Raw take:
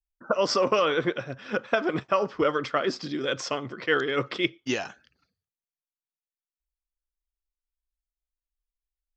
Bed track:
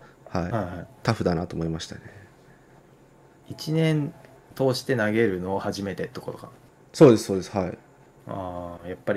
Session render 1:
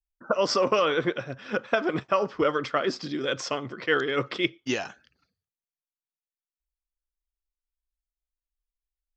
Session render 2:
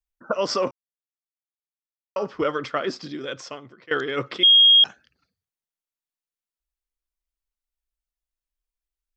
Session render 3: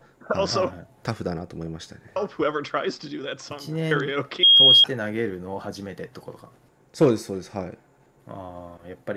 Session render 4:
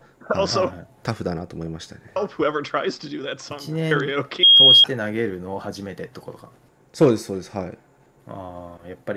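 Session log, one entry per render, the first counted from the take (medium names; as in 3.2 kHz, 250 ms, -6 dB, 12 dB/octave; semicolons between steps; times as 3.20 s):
no audible change
0.71–2.16 s: mute; 2.86–3.91 s: fade out, to -17.5 dB; 4.43–4.84 s: bleep 3.26 kHz -10 dBFS
add bed track -5 dB
trim +2.5 dB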